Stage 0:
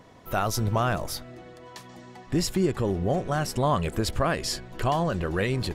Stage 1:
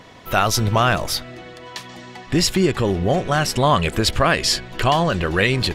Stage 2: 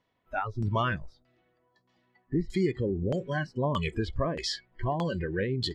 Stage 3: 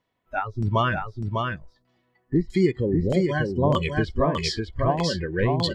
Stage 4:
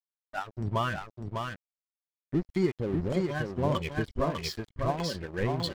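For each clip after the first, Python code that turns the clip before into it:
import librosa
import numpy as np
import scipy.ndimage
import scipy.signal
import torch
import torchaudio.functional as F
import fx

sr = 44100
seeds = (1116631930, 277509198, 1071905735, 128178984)

y1 = fx.peak_eq(x, sr, hz=3000.0, db=8.5, octaves=2.1)
y1 = F.gain(torch.from_numpy(y1), 6.0).numpy()
y2 = fx.noise_reduce_blind(y1, sr, reduce_db=23)
y2 = fx.filter_lfo_lowpass(y2, sr, shape='saw_down', hz=1.6, low_hz=470.0, high_hz=7100.0, q=0.78)
y2 = F.gain(torch.from_numpy(y2), -9.0).numpy()
y3 = y2 + 10.0 ** (-3.0 / 20.0) * np.pad(y2, (int(600 * sr / 1000.0), 0))[:len(y2)]
y3 = fx.upward_expand(y3, sr, threshold_db=-39.0, expansion=1.5)
y3 = F.gain(torch.from_numpy(y3), 7.5).numpy()
y4 = np.sign(y3) * np.maximum(np.abs(y3) - 10.0 ** (-34.5 / 20.0), 0.0)
y4 = F.gain(torch.from_numpy(y4), -5.5).numpy()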